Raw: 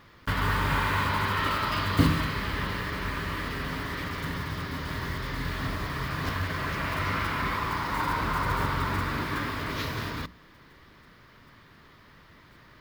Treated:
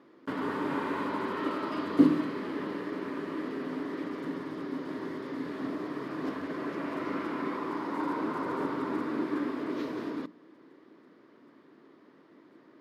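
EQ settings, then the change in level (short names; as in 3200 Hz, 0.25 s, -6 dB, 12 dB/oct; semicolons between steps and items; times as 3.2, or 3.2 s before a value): ladder high-pass 260 Hz, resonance 50%; LPF 11000 Hz 12 dB/oct; tilt shelf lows +8.5 dB; +2.5 dB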